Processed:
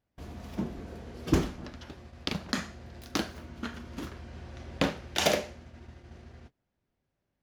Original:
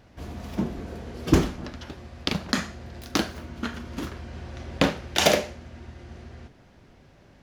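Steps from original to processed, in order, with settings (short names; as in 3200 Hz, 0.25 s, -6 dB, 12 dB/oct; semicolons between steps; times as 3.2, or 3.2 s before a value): gate -43 dBFS, range -22 dB; gain -6 dB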